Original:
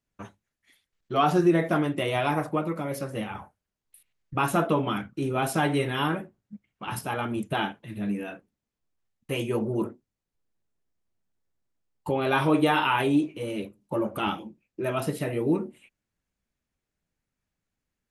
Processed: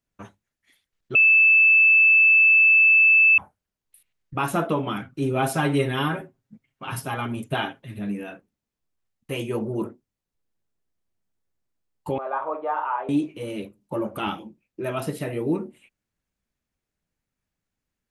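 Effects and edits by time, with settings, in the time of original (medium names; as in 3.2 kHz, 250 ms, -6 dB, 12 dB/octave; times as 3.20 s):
1.15–3.38 s: bleep 2.63 kHz -12 dBFS
5.01–7.99 s: comb 7.5 ms, depth 68%
12.18–13.09 s: Chebyshev band-pass 570–1200 Hz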